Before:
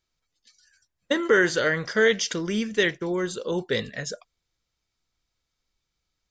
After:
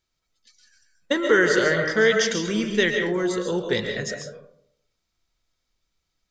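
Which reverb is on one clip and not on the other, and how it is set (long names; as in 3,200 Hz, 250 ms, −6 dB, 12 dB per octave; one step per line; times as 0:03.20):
comb and all-pass reverb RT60 0.7 s, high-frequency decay 0.35×, pre-delay 95 ms, DRR 3.5 dB
level +1 dB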